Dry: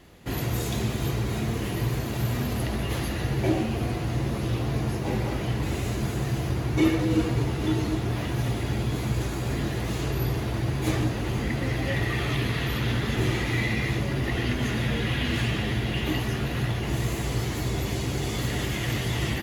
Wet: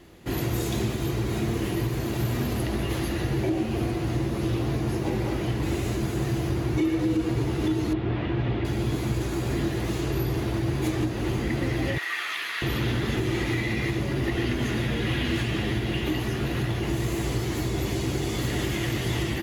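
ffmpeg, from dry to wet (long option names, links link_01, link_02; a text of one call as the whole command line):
ffmpeg -i in.wav -filter_complex "[0:a]asettb=1/sr,asplit=3[link_01][link_02][link_03];[link_01]atrim=end=7.934[link_04];[link_02]atrim=start=7.93:end=8.65,asetpts=PTS-STARTPTS,afade=type=in:duration=0.004:curve=qsin,afade=type=out:start_time=0.716:duration=0.004:curve=qsin,lowpass=frequency=3400:width=0.5412,lowpass=frequency=3400:width=1.3066[link_05];[link_03]atrim=start=8.646[link_06];[link_04][link_05]acrossfade=duration=0.004:curve1=hsin:curve2=qsin[link_07];[link_07][link_06]acrossfade=duration=0.004:curve1=qsin:curve2=hsin,asettb=1/sr,asplit=3[link_08][link_09][link_10];[link_08]atrim=end=11.984[link_11];[link_09]atrim=start=11.98:end=12.62,asetpts=PTS-STARTPTS,afade=type=in:duration=0.004:curve=qsin,afade=type=out:start_time=0.636:duration=0.004:curve=qsin,highpass=frequency=1400:width_type=q:width=1.5[link_12];[link_10]atrim=start=12.616[link_13];[link_11][link_12]acrossfade=duration=0.004:curve1=hsin:curve2=qsin[link_14];[link_14][link_13]acrossfade=duration=0.004:curve1=qsin:curve2=hsin,equalizer=frequency=340:width_type=o:width=0.33:gain=7.5,alimiter=limit=-16.5dB:level=0:latency=1:release=172" out.wav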